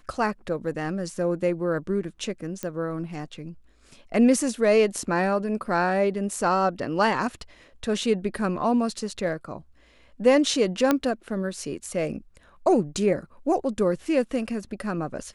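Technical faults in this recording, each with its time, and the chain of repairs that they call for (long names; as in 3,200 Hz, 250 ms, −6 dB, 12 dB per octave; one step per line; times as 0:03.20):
0:02.63: click −16 dBFS
0:10.91: click −7 dBFS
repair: click removal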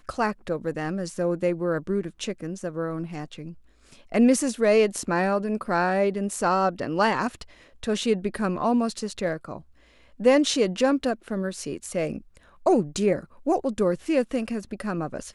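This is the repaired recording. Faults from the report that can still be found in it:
none of them is left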